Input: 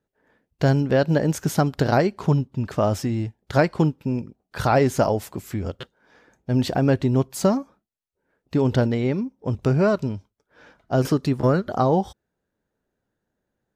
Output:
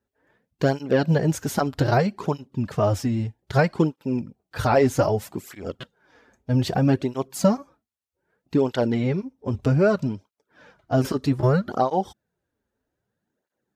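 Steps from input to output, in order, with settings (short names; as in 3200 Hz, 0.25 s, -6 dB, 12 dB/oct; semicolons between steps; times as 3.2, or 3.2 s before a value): tape flanging out of phase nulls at 0.63 Hz, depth 6.7 ms; gain +2 dB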